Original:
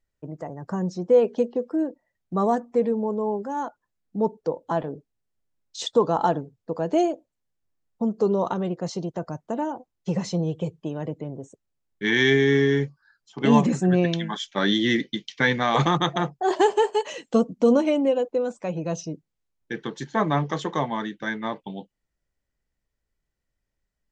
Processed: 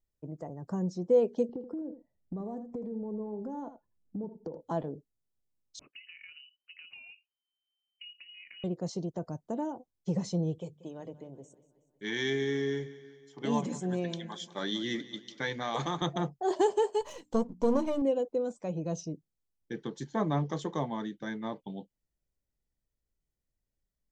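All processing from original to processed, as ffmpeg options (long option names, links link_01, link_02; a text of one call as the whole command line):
ffmpeg -i in.wav -filter_complex "[0:a]asettb=1/sr,asplit=3[link_01][link_02][link_03];[link_01]atrim=end=1.494[link_04];[link_02]atrim=start=1.49:end=4.61,asetpts=PTS-STARTPTS,afade=type=in:duration=0.004:curve=qsin,afade=type=out:start_time=3.116:duration=0.004:curve=qsin,tiltshelf=frequency=1100:gain=8,acompressor=threshold=-28dB:ratio=16:attack=3.2:release=140:knee=1:detection=peak,aecho=1:1:80:0.282,atrim=end_sample=137592[link_05];[link_03]atrim=start=4.606[link_06];[link_04][link_05]acrossfade=duration=0.004:curve1=hsin:curve2=qsin[link_07];[link_07][link_06]acrossfade=duration=0.004:curve1=qsin:curve2=hsin,asettb=1/sr,asplit=3[link_08][link_09][link_10];[link_08]atrim=end=5.794[link_11];[link_09]atrim=start=5.79:end=8.64,asetpts=PTS-STARTPTS,afade=type=in:duration=0.004:curve=qsin,afade=type=out:start_time=2.846:duration=0.004:curve=qsin,acompressor=threshold=-31dB:ratio=12:attack=3.2:release=140:knee=1:detection=peak,tremolo=f=36:d=0.333,lowpass=frequency=2600:width_type=q:width=0.5098,lowpass=frequency=2600:width_type=q:width=0.6013,lowpass=frequency=2600:width_type=q:width=0.9,lowpass=frequency=2600:width_type=q:width=2.563,afreqshift=-3100[link_12];[link_10]atrim=start=8.636[link_13];[link_11][link_12]acrossfade=duration=0.004:curve1=hsin:curve2=qsin[link_14];[link_14][link_13]acrossfade=duration=0.004:curve1=qsin:curve2=hsin,asettb=1/sr,asplit=3[link_15][link_16][link_17];[link_15]atrim=end=10.584[link_18];[link_16]atrim=start=10.58:end=16.02,asetpts=PTS-STARTPTS,afade=type=in:duration=0.004:curve=qsin,afade=type=out:start_time=5.436:duration=0.004:curve=qsin,lowshelf=frequency=470:gain=-9.5,bandreject=frequency=50:width_type=h:width=6,bandreject=frequency=100:width_type=h:width=6,bandreject=frequency=150:width_type=h:width=6,bandreject=frequency=200:width_type=h:width=6,bandreject=frequency=250:width_type=h:width=6,aecho=1:1:185|370|555|740|925:0.133|0.0733|0.0403|0.0222|0.0122,atrim=end_sample=239904[link_19];[link_17]atrim=start=16.016[link_20];[link_18][link_19]acrossfade=duration=0.004:curve1=hsin:curve2=qsin[link_21];[link_21][link_20]acrossfade=duration=0.004:curve1=qsin:curve2=hsin,asettb=1/sr,asplit=3[link_22][link_23][link_24];[link_22]atrim=end=17.014[link_25];[link_23]atrim=start=17.01:end=18.02,asetpts=PTS-STARTPTS,afade=type=in:duration=0.004:curve=qsin,afade=type=out:start_time=1.006:duration=0.004:curve=qsin,aeval=exprs='if(lt(val(0),0),0.447*val(0),val(0))':channel_layout=same,equalizer=frequency=1000:width_type=o:width=0.39:gain=10.5,bandreject=frequency=60:width_type=h:width=6,bandreject=frequency=120:width_type=h:width=6,bandreject=frequency=180:width_type=h:width=6,bandreject=frequency=240:width_type=h:width=6,bandreject=frequency=300:width_type=h:width=6[link_26];[link_24]atrim=start=18.016[link_27];[link_25][link_26]acrossfade=duration=0.004:curve1=hsin:curve2=qsin[link_28];[link_28][link_27]acrossfade=duration=0.004:curve1=qsin:curve2=hsin,equalizer=frequency=1800:width=0.57:gain=-9,bandreject=frequency=2700:width=20,volume=-4.5dB" out.wav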